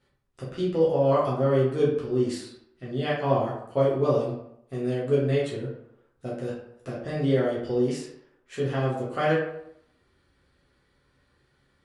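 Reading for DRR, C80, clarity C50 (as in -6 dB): -8.0 dB, 6.5 dB, 2.5 dB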